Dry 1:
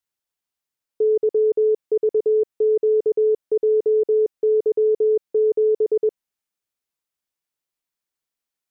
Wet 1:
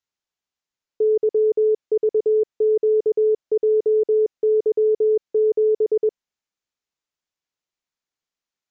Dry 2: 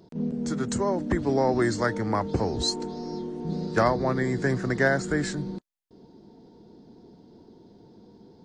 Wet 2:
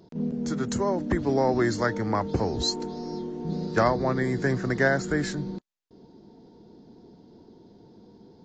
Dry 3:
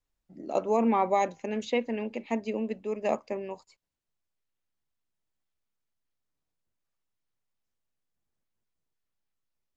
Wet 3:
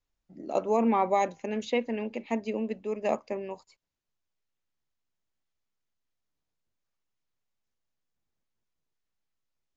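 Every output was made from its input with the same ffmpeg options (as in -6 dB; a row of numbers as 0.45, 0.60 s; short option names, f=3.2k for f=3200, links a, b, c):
-af "aresample=16000,aresample=44100"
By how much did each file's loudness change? 0.0, 0.0, 0.0 LU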